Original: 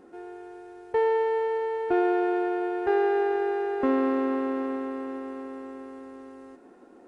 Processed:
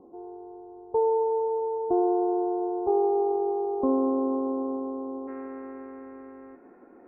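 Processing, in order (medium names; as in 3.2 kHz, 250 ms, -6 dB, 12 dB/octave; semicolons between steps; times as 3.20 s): steep low-pass 1.1 kHz 72 dB/octave, from 5.27 s 2.4 kHz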